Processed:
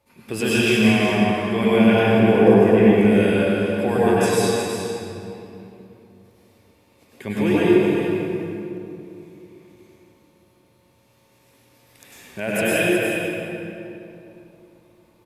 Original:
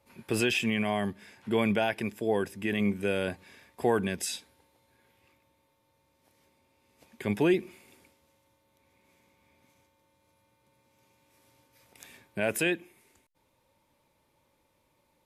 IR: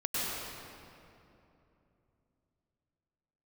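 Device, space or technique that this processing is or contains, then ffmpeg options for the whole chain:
cave: -filter_complex "[0:a]asettb=1/sr,asplit=3[link_01][link_02][link_03];[link_01]atrim=end=1.954[link_04];[link_02]atrim=start=1.95:end=2.82,asetpts=PTS-STARTPTS,afade=type=in:duration=0.004:curve=qsin,afade=type=out:start_time=0.866:duration=0.004:curve=qsin,tiltshelf=frequency=1400:gain=7[link_05];[link_03]atrim=start=2.816[link_06];[link_04][link_05]acrossfade=duration=0.004:curve1=hsin:curve2=qsin[link_07];[link_07][link_06]acrossfade=duration=0.004:curve1=qsin:curve2=hsin,aecho=1:1:364:0.398[link_08];[1:a]atrim=start_sample=2205[link_09];[link_08][link_09]afir=irnorm=-1:irlink=0,volume=2dB"

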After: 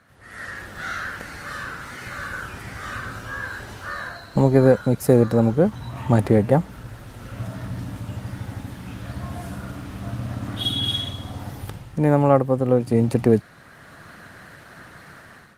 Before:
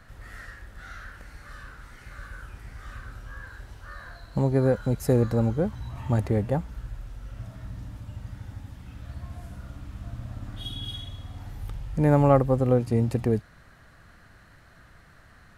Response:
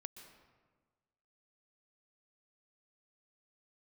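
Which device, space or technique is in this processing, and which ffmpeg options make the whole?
video call: -filter_complex "[0:a]asplit=3[link_01][link_02][link_03];[link_01]afade=type=out:start_time=11.12:duration=0.02[link_04];[link_02]equalizer=frequency=2100:width_type=o:width=0.97:gain=-3.5,afade=type=in:start_time=11.12:duration=0.02,afade=type=out:start_time=11.58:duration=0.02[link_05];[link_03]afade=type=in:start_time=11.58:duration=0.02[link_06];[link_04][link_05][link_06]amix=inputs=3:normalize=0,highpass=140,dynaudnorm=framelen=160:gausssize=5:maxgain=15dB,volume=-1dB" -ar 48000 -c:a libopus -b:a 24k

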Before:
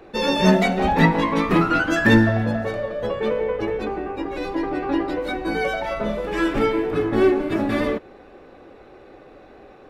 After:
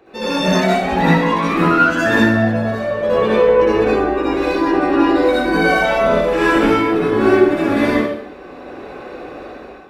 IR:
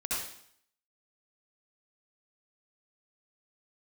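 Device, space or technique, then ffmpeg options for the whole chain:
far laptop microphone: -filter_complex "[1:a]atrim=start_sample=2205[link_01];[0:a][link_01]afir=irnorm=-1:irlink=0,highpass=frequency=120:poles=1,dynaudnorm=framelen=200:gausssize=5:maxgain=11dB,volume=-1dB"

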